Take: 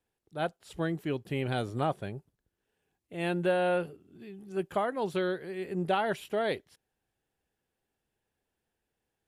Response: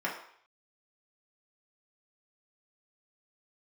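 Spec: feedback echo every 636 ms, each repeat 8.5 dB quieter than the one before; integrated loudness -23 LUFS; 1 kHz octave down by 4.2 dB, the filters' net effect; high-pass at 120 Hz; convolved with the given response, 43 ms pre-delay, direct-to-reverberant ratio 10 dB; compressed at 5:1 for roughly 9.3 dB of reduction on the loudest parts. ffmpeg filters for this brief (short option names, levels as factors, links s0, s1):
-filter_complex "[0:a]highpass=120,equalizer=f=1000:t=o:g=-6.5,acompressor=threshold=0.0158:ratio=5,aecho=1:1:636|1272|1908|2544:0.376|0.143|0.0543|0.0206,asplit=2[s0][s1];[1:a]atrim=start_sample=2205,adelay=43[s2];[s1][s2]afir=irnorm=-1:irlink=0,volume=0.133[s3];[s0][s3]amix=inputs=2:normalize=0,volume=7.94"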